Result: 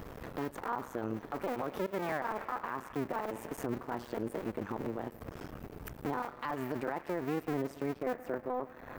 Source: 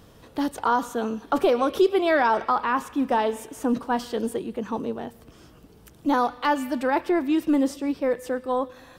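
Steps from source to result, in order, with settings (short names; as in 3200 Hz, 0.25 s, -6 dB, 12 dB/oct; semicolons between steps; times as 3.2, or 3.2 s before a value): cycle switcher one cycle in 2, muted; band shelf 5800 Hz -9.5 dB 2.3 oct, from 8.13 s -16 dB; compressor 3:1, threshold -43 dBFS, peak gain reduction 19.5 dB; limiter -34 dBFS, peak gain reduction 11 dB; gain +8.5 dB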